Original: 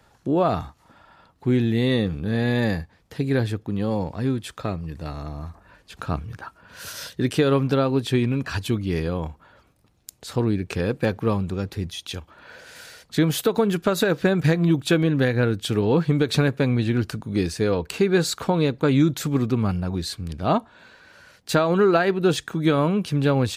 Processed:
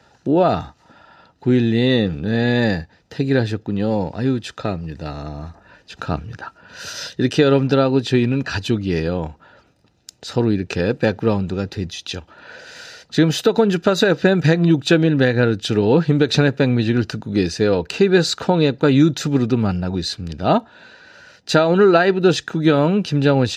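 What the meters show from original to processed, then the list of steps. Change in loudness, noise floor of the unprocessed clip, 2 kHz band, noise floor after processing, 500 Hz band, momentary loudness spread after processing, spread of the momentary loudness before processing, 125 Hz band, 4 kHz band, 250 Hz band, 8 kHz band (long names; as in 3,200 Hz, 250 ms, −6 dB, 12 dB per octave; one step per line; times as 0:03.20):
+5.0 dB, −60 dBFS, +5.5 dB, −57 dBFS, +5.5 dB, 15 LU, 14 LU, +3.0 dB, +6.0 dB, +5.0 dB, +2.5 dB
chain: high shelf with overshoot 7,900 Hz −12 dB, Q 1.5
notch comb filter 1,100 Hz
level +5.5 dB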